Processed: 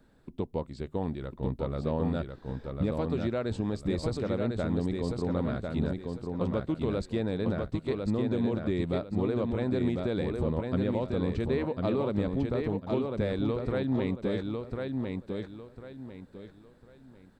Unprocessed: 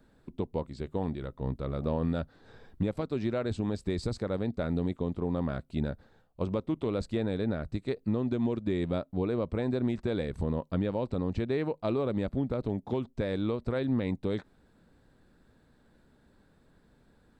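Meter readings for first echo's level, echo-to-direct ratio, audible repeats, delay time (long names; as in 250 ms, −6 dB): −4.0 dB, −3.5 dB, 3, 1,049 ms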